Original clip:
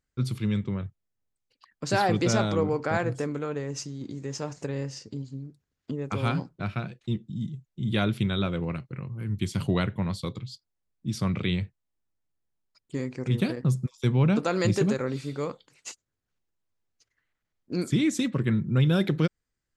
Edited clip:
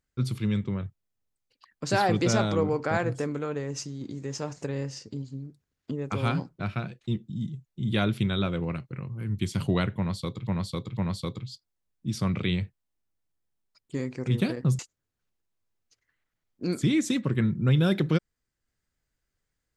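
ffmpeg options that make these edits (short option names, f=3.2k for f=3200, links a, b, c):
-filter_complex "[0:a]asplit=4[a][b][c][d];[a]atrim=end=10.472[e];[b]atrim=start=9.968:end=10.472[f];[c]atrim=start=9.968:end=13.792[g];[d]atrim=start=15.878[h];[e][f]acrossfade=d=0.004:c1=hsin:c2=hsin[i];[i][g]acrossfade=d=0.004:c1=hsin:c2=hsin[j];[j][h]acrossfade=d=0.004:c1=hsin:c2=hsin"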